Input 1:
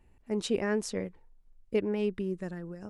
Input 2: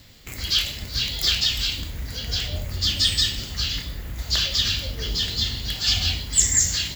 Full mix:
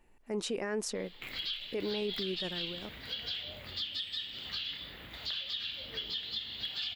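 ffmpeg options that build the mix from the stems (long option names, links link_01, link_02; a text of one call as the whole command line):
ffmpeg -i stem1.wav -i stem2.wav -filter_complex "[0:a]volume=2.5dB[link_01];[1:a]highpass=78,highshelf=frequency=4700:width_type=q:width=3:gain=-11,acompressor=threshold=-29dB:ratio=8,adelay=950,volume=-5.5dB[link_02];[link_01][link_02]amix=inputs=2:normalize=0,equalizer=frequency=75:width_type=o:width=2.7:gain=-14,alimiter=level_in=2.5dB:limit=-24dB:level=0:latency=1:release=11,volume=-2.5dB" out.wav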